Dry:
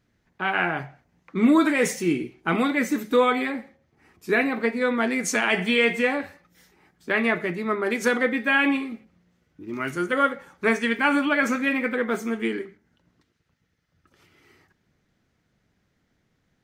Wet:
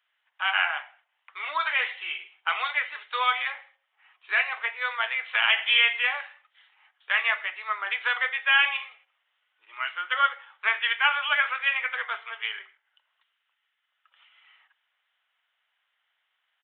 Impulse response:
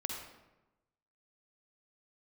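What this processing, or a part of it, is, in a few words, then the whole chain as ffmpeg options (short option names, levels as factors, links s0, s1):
musical greeting card: -af "aresample=8000,aresample=44100,highpass=f=430:w=0.5412,highpass=f=430:w=1.3066,highpass=f=890:w=0.5412,highpass=f=890:w=1.3066,equalizer=f=3000:t=o:w=0.34:g=9"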